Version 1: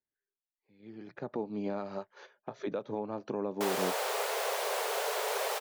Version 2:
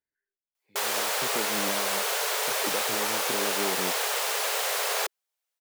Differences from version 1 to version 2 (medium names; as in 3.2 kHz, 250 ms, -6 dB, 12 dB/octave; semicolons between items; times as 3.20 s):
background: entry -2.85 s; master: add FFT filter 680 Hz 0 dB, 1.4 kHz +6 dB, 6.3 kHz +10 dB